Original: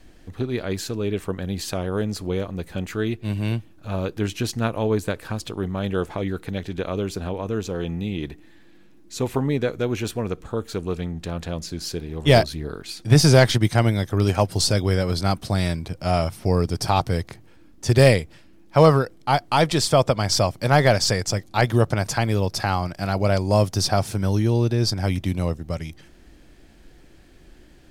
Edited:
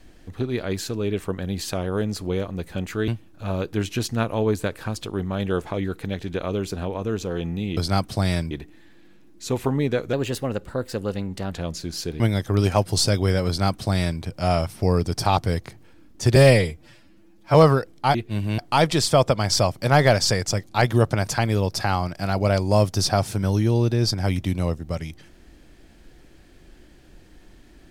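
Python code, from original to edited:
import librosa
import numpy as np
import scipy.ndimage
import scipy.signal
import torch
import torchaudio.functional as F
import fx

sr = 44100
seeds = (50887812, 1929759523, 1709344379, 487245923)

y = fx.edit(x, sr, fx.move(start_s=3.08, length_s=0.44, to_s=19.38),
    fx.speed_span(start_s=9.83, length_s=1.57, speed=1.13),
    fx.cut(start_s=12.08, length_s=1.75),
    fx.duplicate(start_s=15.1, length_s=0.74, to_s=8.21),
    fx.stretch_span(start_s=17.99, length_s=0.79, factor=1.5), tone=tone)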